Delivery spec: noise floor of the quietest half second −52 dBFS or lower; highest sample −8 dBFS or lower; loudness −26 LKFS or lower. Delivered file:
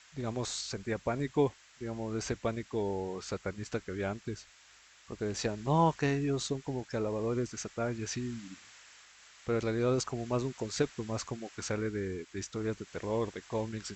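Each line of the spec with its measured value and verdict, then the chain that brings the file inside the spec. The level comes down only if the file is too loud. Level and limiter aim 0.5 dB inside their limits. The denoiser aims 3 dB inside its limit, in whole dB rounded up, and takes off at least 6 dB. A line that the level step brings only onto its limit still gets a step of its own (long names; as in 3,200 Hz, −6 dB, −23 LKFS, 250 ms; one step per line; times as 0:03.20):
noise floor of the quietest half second −60 dBFS: in spec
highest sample −15.0 dBFS: in spec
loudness −34.5 LKFS: in spec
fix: no processing needed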